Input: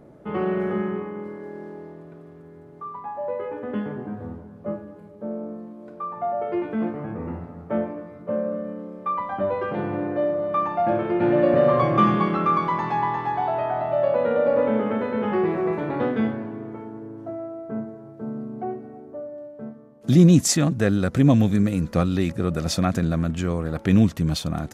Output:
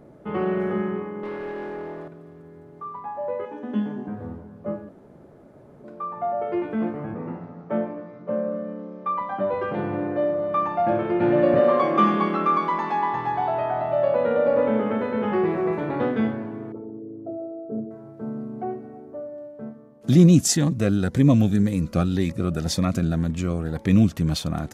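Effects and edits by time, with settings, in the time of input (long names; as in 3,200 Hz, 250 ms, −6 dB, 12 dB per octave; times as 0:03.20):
0:01.23–0:02.08: mid-hump overdrive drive 20 dB, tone 2,900 Hz, clips at −24 dBFS
0:03.45–0:04.08: loudspeaker in its box 200–10,000 Hz, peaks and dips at 220 Hz +8 dB, 500 Hz −9 dB, 1,300 Hz −8 dB, 2,100 Hz −7 dB, 3,400 Hz +4 dB, 6,100 Hz +8 dB
0:04.89–0:05.84: fill with room tone
0:07.14–0:09.54: Chebyshev band-pass filter 110–6,300 Hz, order 5
0:11.59–0:13.14: Butterworth high-pass 190 Hz
0:16.72–0:17.91: spectral envelope exaggerated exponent 2
0:20.26–0:24.13: phaser whose notches keep moving one way rising 1.9 Hz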